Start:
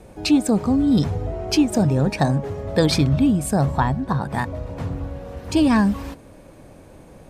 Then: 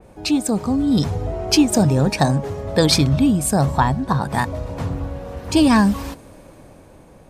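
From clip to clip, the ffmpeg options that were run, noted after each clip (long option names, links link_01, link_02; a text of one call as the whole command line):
ffmpeg -i in.wav -af "equalizer=frequency=1000:width=1.5:gain=2.5,dynaudnorm=framelen=430:gausssize=5:maxgain=11.5dB,adynamicequalizer=threshold=0.0178:dfrequency=3300:dqfactor=0.7:tfrequency=3300:tqfactor=0.7:attack=5:release=100:ratio=0.375:range=3.5:mode=boostabove:tftype=highshelf,volume=-2.5dB" out.wav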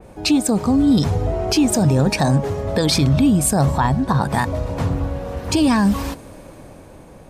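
ffmpeg -i in.wav -af "alimiter=level_in=11dB:limit=-1dB:release=50:level=0:latency=1,volume=-7dB" out.wav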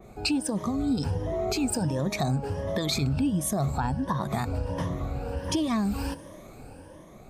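ffmpeg -i in.wav -af "afftfilt=real='re*pow(10,12/40*sin(2*PI*(1.2*log(max(b,1)*sr/1024/100)/log(2)-(1.4)*(pts-256)/sr)))':imag='im*pow(10,12/40*sin(2*PI*(1.2*log(max(b,1)*sr/1024/100)/log(2)-(1.4)*(pts-256)/sr)))':win_size=1024:overlap=0.75,acompressor=threshold=-19dB:ratio=2.5,volume=-7dB" out.wav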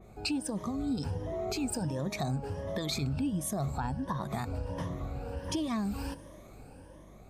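ffmpeg -i in.wav -af "aeval=exprs='val(0)+0.00398*(sin(2*PI*50*n/s)+sin(2*PI*2*50*n/s)/2+sin(2*PI*3*50*n/s)/3+sin(2*PI*4*50*n/s)/4+sin(2*PI*5*50*n/s)/5)':channel_layout=same,volume=-6dB" out.wav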